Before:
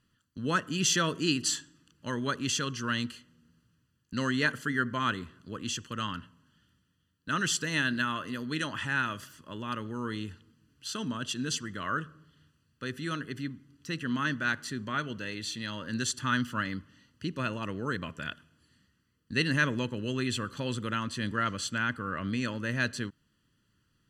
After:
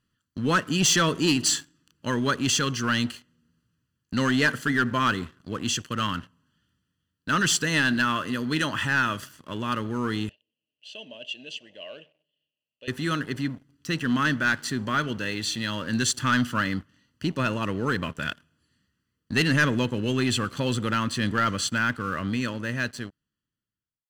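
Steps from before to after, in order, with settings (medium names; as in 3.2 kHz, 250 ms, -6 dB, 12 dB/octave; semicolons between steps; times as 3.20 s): fade out at the end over 2.56 s; waveshaping leveller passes 2; 10.29–12.88 s: two resonant band-passes 1.3 kHz, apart 2.2 oct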